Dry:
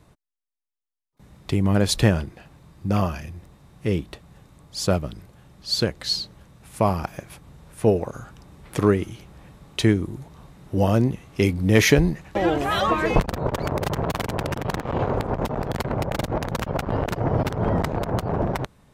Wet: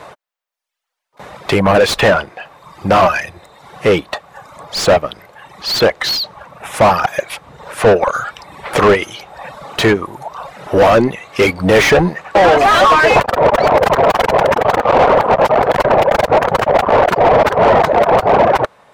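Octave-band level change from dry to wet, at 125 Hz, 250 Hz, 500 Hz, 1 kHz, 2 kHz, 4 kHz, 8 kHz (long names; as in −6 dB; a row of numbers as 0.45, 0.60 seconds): +0.5, +4.0, +14.0, +16.5, +14.0, +9.5, +5.5 decibels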